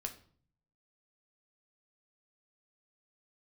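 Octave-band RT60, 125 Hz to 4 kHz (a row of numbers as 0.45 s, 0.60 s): 1.0 s, 0.75 s, 0.55 s, 0.50 s, 0.40 s, 0.40 s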